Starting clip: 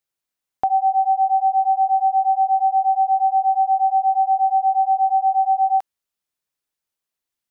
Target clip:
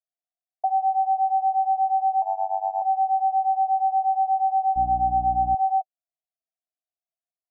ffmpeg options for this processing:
ffmpeg -i in.wav -filter_complex "[0:a]asuperpass=centerf=690:order=8:qfactor=4.9,asettb=1/sr,asplit=3[link_01][link_02][link_03];[link_01]atrim=end=2.224[link_04];[link_02]atrim=start=2.22:end=2.82,asetpts=PTS-STARTPTS,afade=type=in:duration=0.004:curve=qsin,afade=type=out:start_time=0.596:duration=0.004:curve=qsin,tremolo=f=98:d=0.974[link_05];[link_03]atrim=start=2.816[link_06];[link_04][link_05]acrossfade=duration=0.004:curve1=hsin:curve2=qsin[link_07];[link_07][link_06]acrossfade=duration=0.004:curve1=qsin:curve2=hsin,asettb=1/sr,asplit=3[link_08][link_09][link_10];[link_08]atrim=end=4.764[link_11];[link_09]atrim=start=4.76:end=5.55,asetpts=PTS-STARTPTS,afade=type=in:duration=0.004:curve=qsin,afade=type=out:start_time=0.786:duration=0.004:curve=qsin,aeval=exprs='val(0)+0.0251*(sin(2*PI*60*n/s)+sin(2*PI*2*60*n/s)/2+sin(2*PI*3*60*n/s)/3+sin(2*PI*4*60*n/s)/4+sin(2*PI*5*60*n/s)/5)':channel_layout=same[link_12];[link_10]atrim=start=5.546[link_13];[link_11][link_12]acrossfade=duration=0.004:curve1=hsin:curve2=qsin[link_14];[link_14][link_13]acrossfade=duration=0.004:curve1=qsin:curve2=hsin" out.wav

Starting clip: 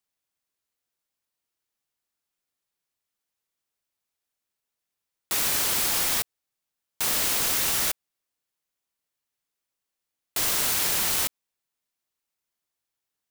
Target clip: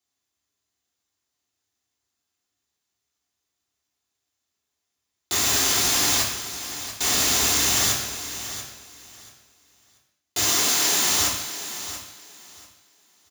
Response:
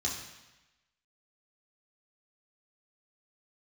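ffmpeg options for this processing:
-filter_complex "[0:a]asettb=1/sr,asplit=3[link_01][link_02][link_03];[link_01]atrim=end=10.434[link_04];[link_02]atrim=start=10.43:end=11.19,asetpts=PTS-STARTPTS,afade=type=in:duration=0.004:curve=qsin,afade=type=out:start_time=0.756:duration=0.004:curve=qsin,highpass=200[link_05];[link_03]atrim=start=11.186[link_06];[link_04][link_05]acrossfade=duration=0.004:curve1=hsin:curve2=qsin[link_07];[link_07][link_06]acrossfade=duration=0.004:curve1=qsin:curve2=hsin,aecho=1:1:686|1372|2058:0.251|0.0527|0.0111[link_08];[1:a]atrim=start_sample=2205,afade=type=out:start_time=0.3:duration=0.01,atrim=end_sample=13671[link_09];[link_08][link_09]afir=irnorm=-1:irlink=0"

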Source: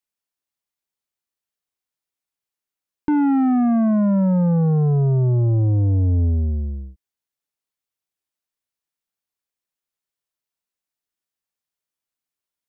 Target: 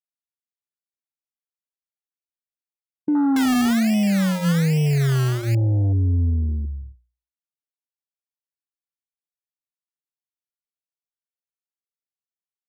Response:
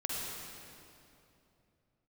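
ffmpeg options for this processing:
-filter_complex "[0:a]afwtdn=0.0794,bandreject=frequency=60:width_type=h:width=6,bandreject=frequency=120:width_type=h:width=6,bandreject=frequency=180:width_type=h:width=6,asettb=1/sr,asplit=3[link_01][link_02][link_03];[link_01]atrim=end=3.364[link_04];[link_02]atrim=start=3.36:end=5.55,asetpts=PTS-STARTPTS,afade=type=in:duration=0.004:curve=qsin,afade=type=out:start_time=2.186:duration=0.004:curve=qsin,acrusher=samples=23:mix=1:aa=0.000001:lfo=1:lforange=13.8:lforate=1.2[link_05];[link_03]atrim=start=5.546[link_06];[link_04][link_05]acrossfade=duration=0.004:curve1=hsin:curve2=qsin[link_07];[link_07][link_06]acrossfade=duration=0.004:curve1=qsin:curve2=hsin,volume=-1.5dB"

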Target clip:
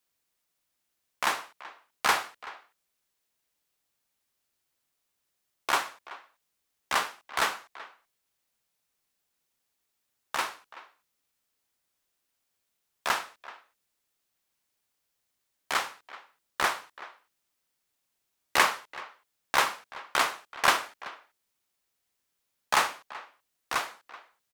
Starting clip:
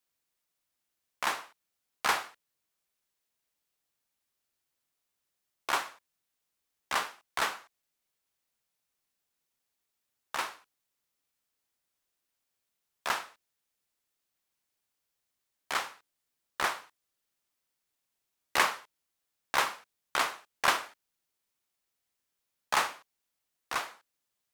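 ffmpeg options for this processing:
ffmpeg -i in.wav -filter_complex "[0:a]asplit=2[link_01][link_02];[link_02]adelay=380,highpass=300,lowpass=3400,asoftclip=type=hard:threshold=-19dB,volume=-17dB[link_03];[link_01][link_03]amix=inputs=2:normalize=0,volume=3.5dB" out.wav

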